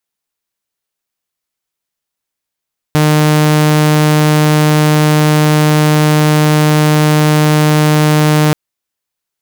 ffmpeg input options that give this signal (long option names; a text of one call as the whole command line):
ffmpeg -f lavfi -i "aevalsrc='0.596*(2*mod(152*t,1)-1)':duration=5.58:sample_rate=44100" out.wav